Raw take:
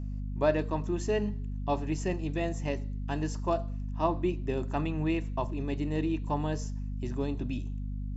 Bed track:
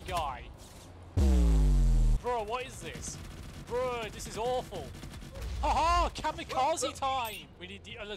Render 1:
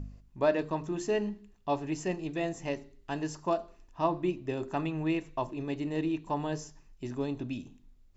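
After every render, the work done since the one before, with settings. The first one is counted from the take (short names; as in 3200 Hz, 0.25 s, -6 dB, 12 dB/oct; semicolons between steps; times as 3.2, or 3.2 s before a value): de-hum 50 Hz, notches 8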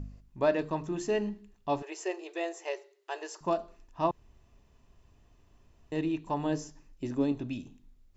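1.82–3.41 brick-wall FIR high-pass 330 Hz; 4.11–5.92 room tone; 6.45–7.32 small resonant body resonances 290/520 Hz, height 8 dB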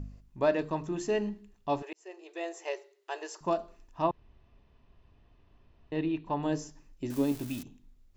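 1.93–2.62 fade in; 4.02–6.43 LPF 4300 Hz 24 dB/oct; 7.1–7.63 switching spikes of -31 dBFS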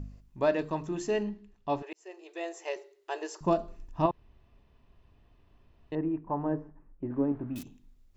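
1.23–1.91 air absorption 86 m; 2.76–4.06 low shelf 320 Hz +11.5 dB; 5.95–7.56 LPF 1500 Hz 24 dB/oct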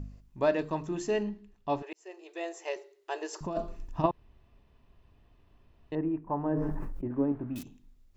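3.33–4.04 negative-ratio compressor -31 dBFS; 6.48–7.08 sustainer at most 20 dB/s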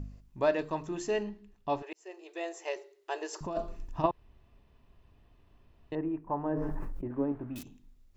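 dynamic EQ 190 Hz, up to -5 dB, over -42 dBFS, Q 0.89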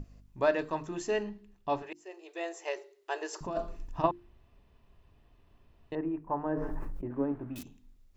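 notches 50/100/150/200/250/300/350 Hz; dynamic EQ 1500 Hz, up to +4 dB, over -49 dBFS, Q 2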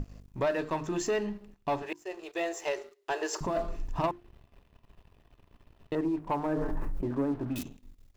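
compressor 2:1, threshold -35 dBFS, peak gain reduction 8.5 dB; sample leveller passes 2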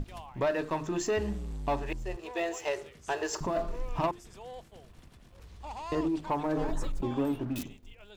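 add bed track -13 dB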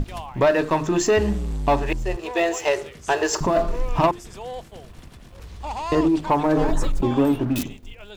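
gain +11 dB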